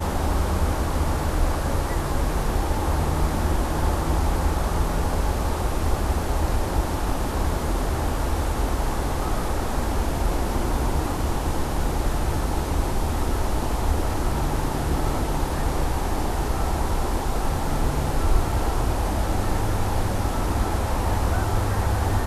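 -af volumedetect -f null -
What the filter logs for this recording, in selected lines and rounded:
mean_volume: -22.2 dB
max_volume: -7.3 dB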